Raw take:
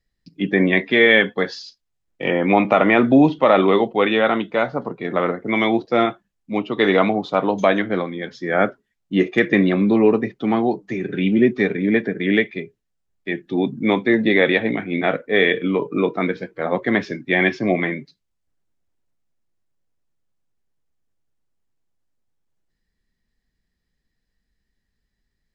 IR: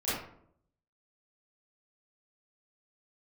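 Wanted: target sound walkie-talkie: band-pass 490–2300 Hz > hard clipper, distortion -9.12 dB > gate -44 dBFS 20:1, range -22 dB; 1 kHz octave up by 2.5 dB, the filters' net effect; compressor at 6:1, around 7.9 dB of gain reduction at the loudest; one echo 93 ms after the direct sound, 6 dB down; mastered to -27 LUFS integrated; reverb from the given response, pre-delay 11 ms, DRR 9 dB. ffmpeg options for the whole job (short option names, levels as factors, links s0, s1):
-filter_complex "[0:a]equalizer=f=1000:t=o:g=4.5,acompressor=threshold=0.158:ratio=6,aecho=1:1:93:0.501,asplit=2[s0][s1];[1:a]atrim=start_sample=2205,adelay=11[s2];[s1][s2]afir=irnorm=-1:irlink=0,volume=0.141[s3];[s0][s3]amix=inputs=2:normalize=0,highpass=490,lowpass=2300,asoftclip=type=hard:threshold=0.0841,agate=range=0.0794:threshold=0.00631:ratio=20"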